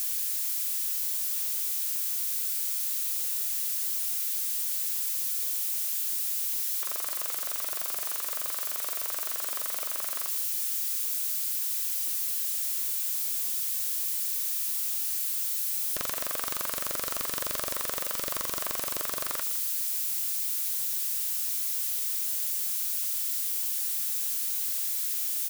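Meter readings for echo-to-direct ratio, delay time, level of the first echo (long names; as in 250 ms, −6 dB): −14.5 dB, 159 ms, −14.5 dB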